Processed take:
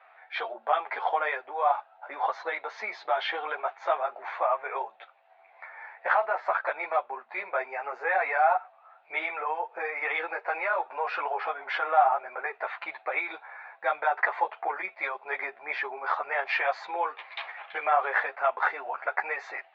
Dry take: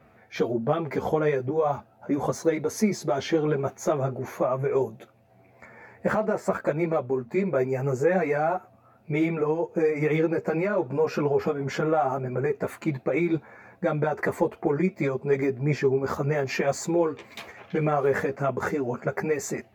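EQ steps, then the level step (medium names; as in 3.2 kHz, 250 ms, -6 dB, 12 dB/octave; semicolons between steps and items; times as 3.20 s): elliptic band-pass 760–3800 Hz, stop band 80 dB; distance through air 130 m; +6.5 dB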